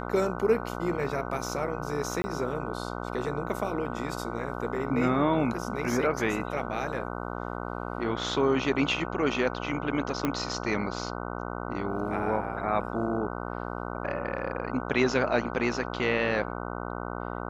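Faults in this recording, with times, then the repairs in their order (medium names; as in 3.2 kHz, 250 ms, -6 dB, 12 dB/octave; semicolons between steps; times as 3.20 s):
buzz 60 Hz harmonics 25 -35 dBFS
2.22–2.24 s: dropout 20 ms
10.25 s: pop -13 dBFS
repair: de-click; de-hum 60 Hz, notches 25; interpolate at 2.22 s, 20 ms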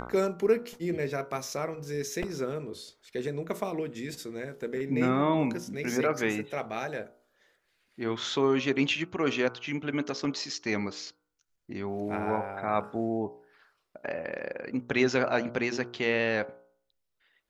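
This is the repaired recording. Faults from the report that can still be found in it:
nothing left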